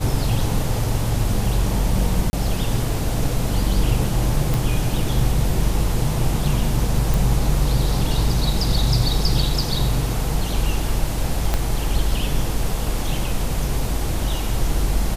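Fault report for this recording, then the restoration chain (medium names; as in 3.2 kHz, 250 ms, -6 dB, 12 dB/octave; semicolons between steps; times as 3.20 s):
2.30–2.33 s: dropout 30 ms
4.54 s: pop
7.14 s: pop
11.54 s: pop -6 dBFS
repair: de-click; interpolate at 2.30 s, 30 ms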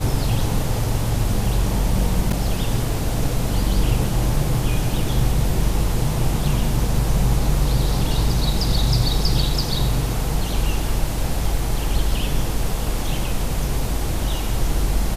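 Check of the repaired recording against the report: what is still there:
11.54 s: pop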